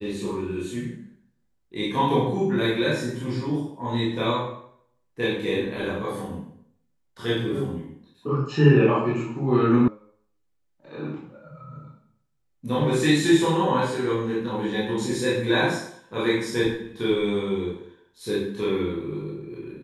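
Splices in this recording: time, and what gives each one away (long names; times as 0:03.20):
0:09.88: cut off before it has died away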